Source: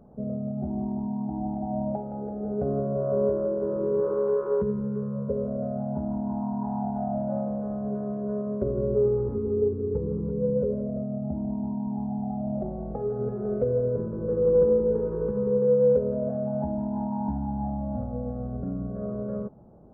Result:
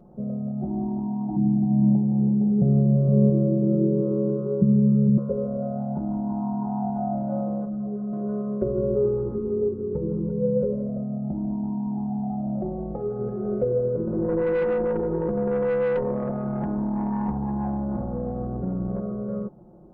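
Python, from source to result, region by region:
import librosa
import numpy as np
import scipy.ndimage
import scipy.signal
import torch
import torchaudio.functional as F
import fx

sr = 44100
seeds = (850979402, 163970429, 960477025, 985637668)

y = fx.chain(x, sr, fx.bandpass_q(hz=140.0, q=0.69),
    fx.peak_eq(hz=150.0, db=12.0, octaves=1.7),
    fx.echo_single(ms=464, db=-7.5), at=(1.36, 5.18))
y = fx.chain(y, sr, fx.lowpass(hz=1500.0, slope=12),
    fx.peak_eq(hz=860.0, db=-5.0, octaves=2.0),
    fx.ensemble(), at=(7.65, 8.13))
y = fx.chain(y, sr, fx.tube_stage(drive_db=22.0, bias=0.55),
    fx.env_flatten(amount_pct=50), at=(14.07, 19.0))
y = fx.peak_eq(y, sr, hz=330.0, db=7.5, octaves=0.21)
y = y + 0.59 * np.pad(y, (int(5.6 * sr / 1000.0), 0))[:len(y)]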